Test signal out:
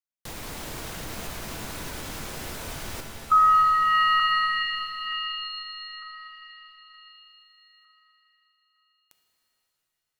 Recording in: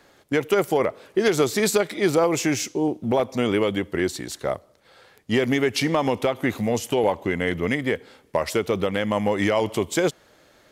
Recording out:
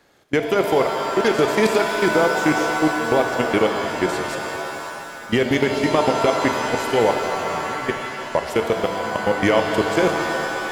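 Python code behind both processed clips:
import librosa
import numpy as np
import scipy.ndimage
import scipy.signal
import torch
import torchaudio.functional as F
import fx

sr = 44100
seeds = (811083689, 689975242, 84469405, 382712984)

y = fx.level_steps(x, sr, step_db=21)
y = fx.rev_shimmer(y, sr, seeds[0], rt60_s=3.2, semitones=7, shimmer_db=-2, drr_db=5.0)
y = y * librosa.db_to_amplitude(4.5)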